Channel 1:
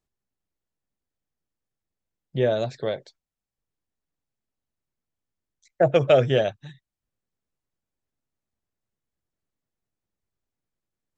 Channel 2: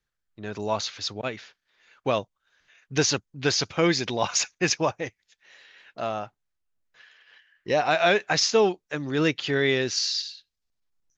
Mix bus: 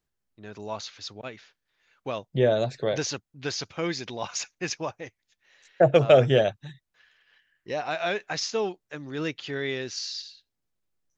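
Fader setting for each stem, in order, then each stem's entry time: +0.5, -7.5 dB; 0.00, 0.00 s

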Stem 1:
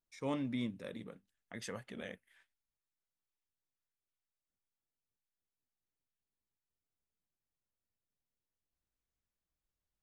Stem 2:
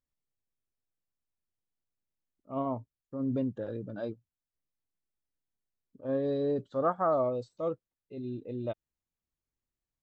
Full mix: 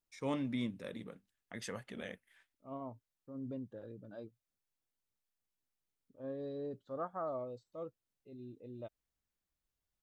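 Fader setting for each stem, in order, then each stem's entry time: +0.5, -12.0 dB; 0.00, 0.15 s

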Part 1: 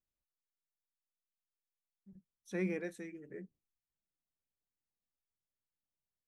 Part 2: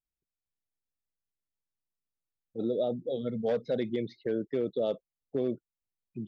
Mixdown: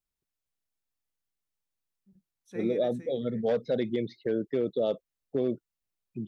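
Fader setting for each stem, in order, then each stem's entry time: -4.0, +2.0 dB; 0.00, 0.00 s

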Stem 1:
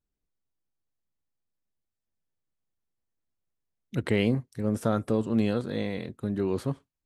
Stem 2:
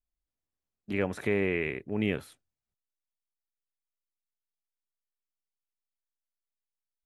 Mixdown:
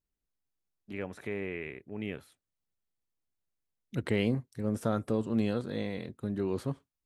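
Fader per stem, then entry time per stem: -4.0, -8.5 dB; 0.00, 0.00 s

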